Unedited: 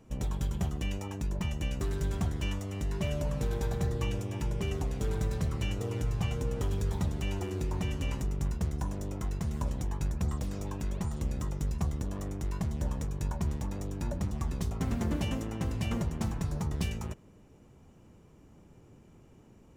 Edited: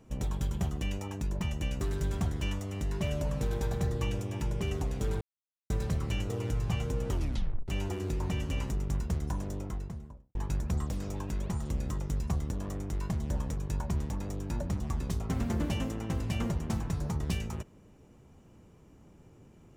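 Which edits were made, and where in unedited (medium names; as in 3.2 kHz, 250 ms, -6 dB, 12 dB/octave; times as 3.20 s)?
5.21 s: insert silence 0.49 s
6.62 s: tape stop 0.57 s
8.95–9.86 s: studio fade out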